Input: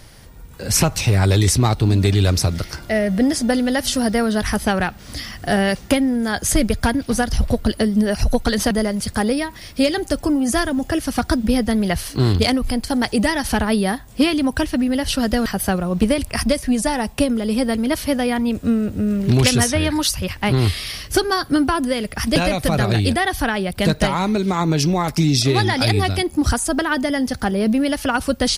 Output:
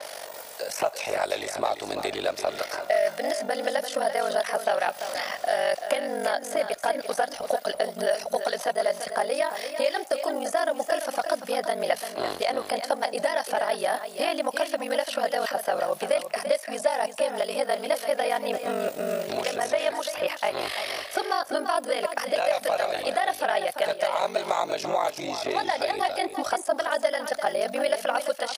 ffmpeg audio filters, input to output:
-filter_complex "[0:a]highshelf=f=3200:g=11.5,areverse,acompressor=threshold=0.0708:ratio=6,areverse,highpass=f=620:t=q:w=4.9,acrossover=split=1000|2200[s0][s1][s2];[s0]acompressor=threshold=0.0251:ratio=4[s3];[s1]acompressor=threshold=0.0112:ratio=4[s4];[s2]acompressor=threshold=0.00794:ratio=4[s5];[s3][s4][s5]amix=inputs=3:normalize=0,aeval=exprs='val(0)*sin(2*PI*24*n/s)':c=same,asplit=2[s6][s7];[s7]aecho=0:1:341:0.355[s8];[s6][s8]amix=inputs=2:normalize=0,adynamicequalizer=threshold=0.00224:dfrequency=4400:dqfactor=0.7:tfrequency=4400:tqfactor=0.7:attack=5:release=100:ratio=0.375:range=2.5:mode=cutabove:tftype=highshelf,volume=2.66"

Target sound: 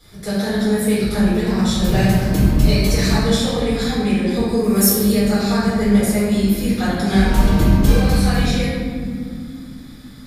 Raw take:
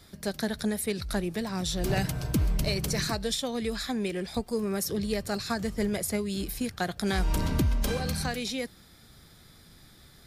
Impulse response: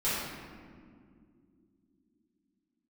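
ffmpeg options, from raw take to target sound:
-filter_complex "[0:a]asettb=1/sr,asplit=3[s0][s1][s2];[s0]atrim=end=4.634[s3];[s1]atrim=start=4.63:end=5.12,asetpts=PTS-STARTPTS,afade=t=in:d=0.004:c=qsin,afade=t=out:st=0.486:d=0.004:c=qsin,aemphasis=mode=production:type=50fm[s4];[s2]atrim=start=5.116[s5];[s3][s4]acrossfade=d=0.004:c1=hsin:c2=qsin[s6];[s6][s5]acrossfade=d=0.004:c1=qsin:c2=hsin,acontrast=61[s7];[1:a]atrim=start_sample=2205,asetrate=41013,aresample=44100[s8];[s7][s8]afir=irnorm=-1:irlink=0,volume=0.501"

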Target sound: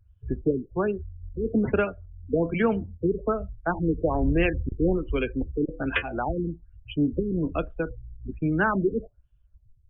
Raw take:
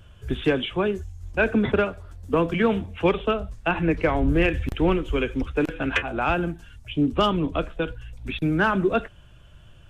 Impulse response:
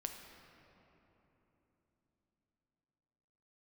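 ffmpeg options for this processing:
-af "afftdn=nr=29:nf=-31,afftfilt=real='re*lt(b*sr/1024,470*pow(4300/470,0.5+0.5*sin(2*PI*1.2*pts/sr)))':imag='im*lt(b*sr/1024,470*pow(4300/470,0.5+0.5*sin(2*PI*1.2*pts/sr)))':win_size=1024:overlap=0.75,volume=0.794"

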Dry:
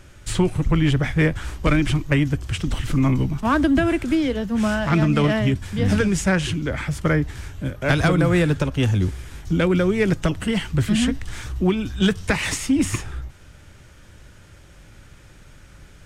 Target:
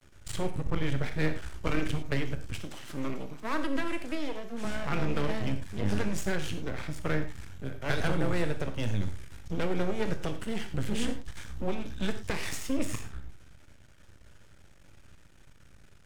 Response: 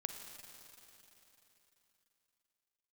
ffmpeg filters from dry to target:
-filter_complex "[0:a]asettb=1/sr,asplit=3[s0][s1][s2];[s0]atrim=end=2.594[s3];[s1]atrim=start=2.59:end=4.65,asetpts=PTS-STARTPTS,afade=t=in:d=0.004:c=qsin,afade=t=out:st=2.056:d=0.004:c=qsin,highpass=260[s4];[s2]atrim=start=4.646[s5];[s3][s4]acrossfade=d=0.004:c1=hsin:c2=qsin[s6];[s6][s5]acrossfade=d=0.004:c1=qsin:c2=hsin,aeval=exprs='max(val(0),0)':c=same[s7];[1:a]atrim=start_sample=2205,afade=t=out:st=0.27:d=0.01,atrim=end_sample=12348,asetrate=83790,aresample=44100[s8];[s7][s8]afir=irnorm=-1:irlink=0"

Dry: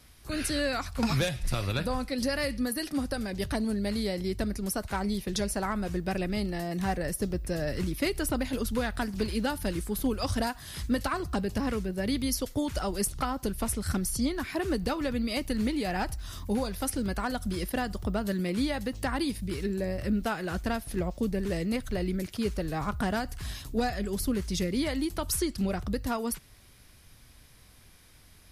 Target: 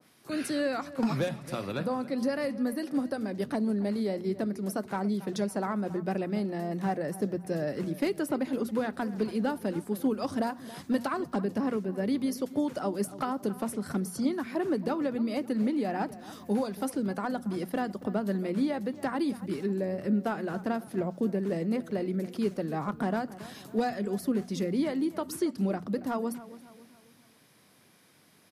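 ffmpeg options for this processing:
-filter_complex "[0:a]highpass=f=160:w=0.5412,highpass=f=160:w=1.3066,asoftclip=type=hard:threshold=0.0944,tiltshelf=f=1400:g=3.5,bandreject=f=60:t=h:w=6,bandreject=f=120:t=h:w=6,bandreject=f=180:t=h:w=6,bandreject=f=240:t=h:w=6,asplit=2[s0][s1];[s1]adelay=277,lowpass=f=2400:p=1,volume=0.158,asplit=2[s2][s3];[s3]adelay=277,lowpass=f=2400:p=1,volume=0.46,asplit=2[s4][s5];[s5]adelay=277,lowpass=f=2400:p=1,volume=0.46,asplit=2[s6][s7];[s7]adelay=277,lowpass=f=2400:p=1,volume=0.46[s8];[s0][s2][s4][s6][s8]amix=inputs=5:normalize=0,adynamicequalizer=threshold=0.00501:dfrequency=1800:dqfactor=0.7:tfrequency=1800:tqfactor=0.7:attack=5:release=100:ratio=0.375:range=3.5:mode=cutabove:tftype=highshelf,volume=0.841"

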